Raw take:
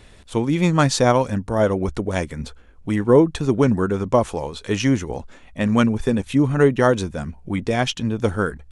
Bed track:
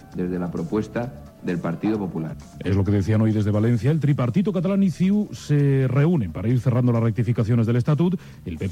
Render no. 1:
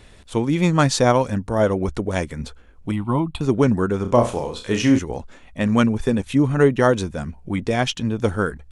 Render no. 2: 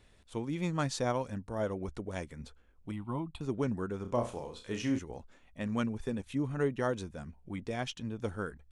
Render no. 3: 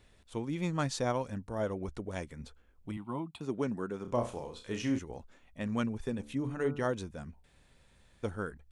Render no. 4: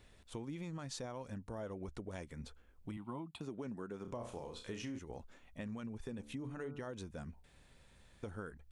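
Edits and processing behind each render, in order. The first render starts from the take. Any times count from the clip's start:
2.91–3.41 s: static phaser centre 1.7 kHz, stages 6; 4.01–4.99 s: flutter echo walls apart 5.7 m, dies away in 0.31 s
trim -15.5 dB
2.97–4.08 s: high-pass 160 Hz; 6.15–6.86 s: de-hum 72.72 Hz, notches 21; 7.44–8.23 s: room tone
peak limiter -26.5 dBFS, peak gain reduction 9.5 dB; compression 4:1, threshold -42 dBFS, peak gain reduction 10 dB

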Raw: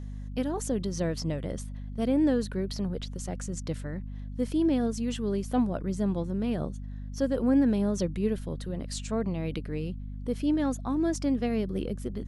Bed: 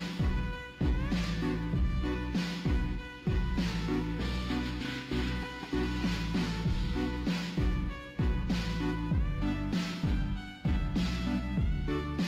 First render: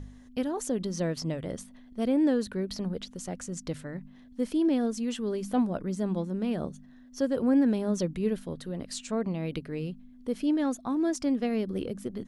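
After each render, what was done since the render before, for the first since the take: de-hum 50 Hz, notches 4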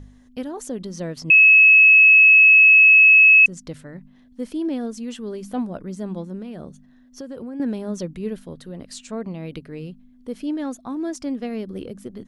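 1.30–3.46 s: bleep 2.58 kHz -7.5 dBFS; 6.41–7.60 s: compression, threshold -30 dBFS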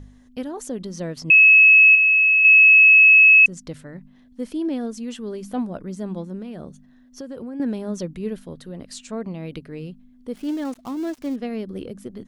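1.95–2.45 s: low-pass 1.7 kHz 6 dB/octave; 10.33–11.36 s: dead-time distortion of 0.12 ms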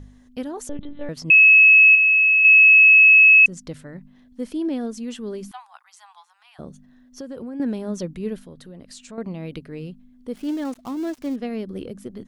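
0.69–1.09 s: monotone LPC vocoder at 8 kHz 290 Hz; 5.51–6.59 s: rippled Chebyshev high-pass 770 Hz, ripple 3 dB; 8.43–9.18 s: compression 2:1, threshold -41 dBFS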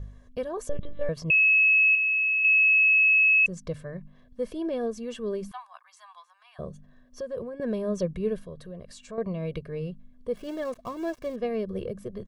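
treble shelf 2.1 kHz -9.5 dB; comb 1.8 ms, depth 84%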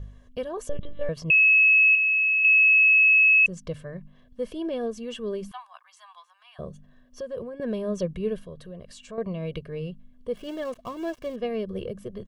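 peaking EQ 3 kHz +8 dB 0.28 oct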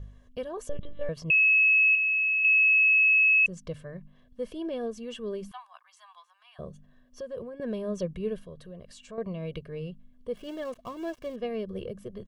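trim -3.5 dB

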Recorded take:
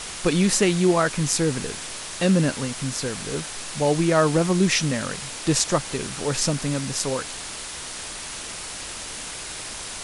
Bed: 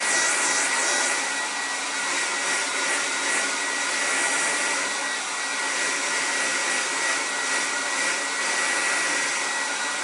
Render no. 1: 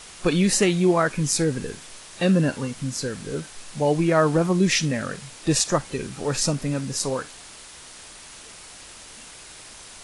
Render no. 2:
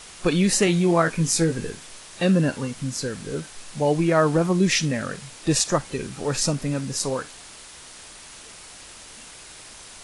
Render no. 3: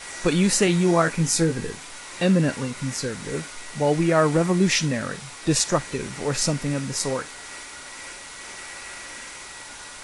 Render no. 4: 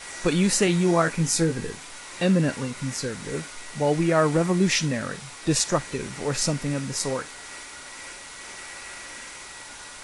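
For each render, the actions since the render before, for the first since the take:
noise print and reduce 9 dB
0.65–1.70 s: doubling 18 ms -7 dB
add bed -15.5 dB
trim -1.5 dB

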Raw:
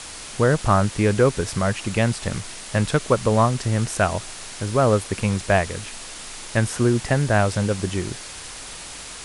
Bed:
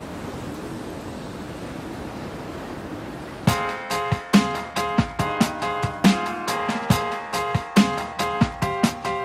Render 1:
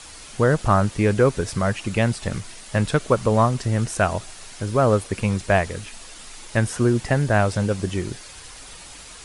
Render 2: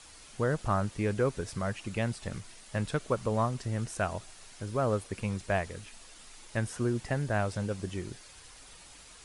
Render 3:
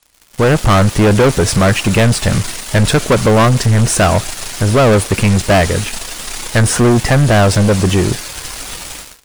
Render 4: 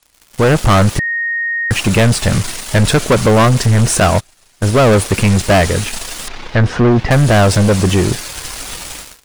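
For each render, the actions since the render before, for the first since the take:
noise reduction 7 dB, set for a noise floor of -37 dBFS
trim -11 dB
level rider gain up to 9.5 dB; waveshaping leveller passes 5
0.99–1.71 s: bleep 1.86 kHz -15 dBFS; 4.00–4.88 s: gate -14 dBFS, range -26 dB; 6.28–7.11 s: distance through air 240 m

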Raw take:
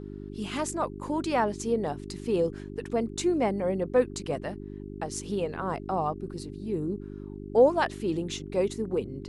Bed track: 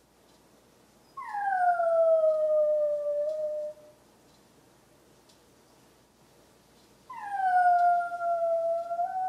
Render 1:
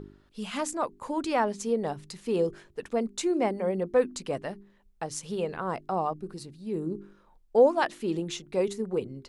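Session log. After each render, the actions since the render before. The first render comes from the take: de-hum 50 Hz, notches 8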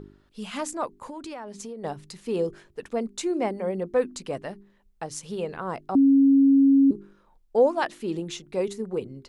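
0.97–1.84 s: compression 8:1, threshold -34 dBFS; 5.95–6.91 s: bleep 274 Hz -13.5 dBFS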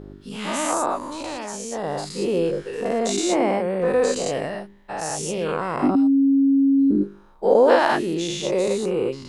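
every event in the spectrogram widened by 240 ms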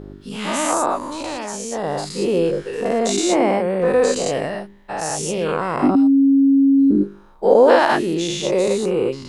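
trim +3.5 dB; peak limiter -2 dBFS, peak gain reduction 2.5 dB

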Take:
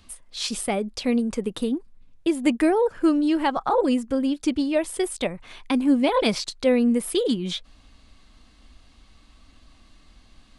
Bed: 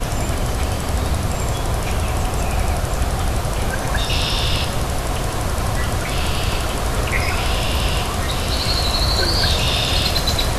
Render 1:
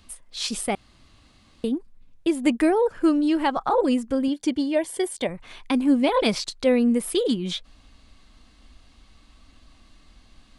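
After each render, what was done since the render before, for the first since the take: 0.75–1.64 s: room tone; 4.28–5.29 s: comb of notches 1.3 kHz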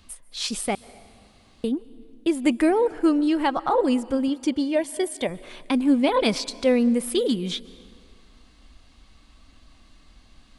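plate-style reverb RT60 2 s, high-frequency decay 0.8×, pre-delay 120 ms, DRR 19.5 dB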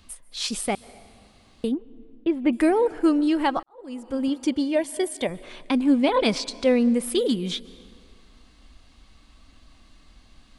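1.74–2.53 s: distance through air 380 m; 3.63–4.28 s: fade in quadratic; 5.43–7.02 s: low-pass 8.8 kHz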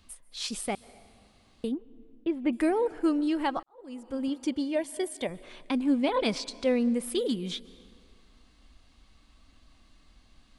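trim -6 dB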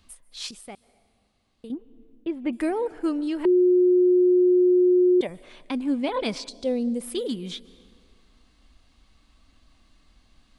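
0.51–1.70 s: gain -9.5 dB; 3.45–5.21 s: bleep 361 Hz -14.5 dBFS; 6.49–7.01 s: high-order bell 1.6 kHz -11.5 dB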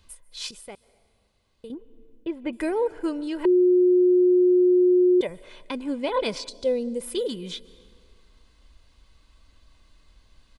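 comb 2 ms, depth 47%

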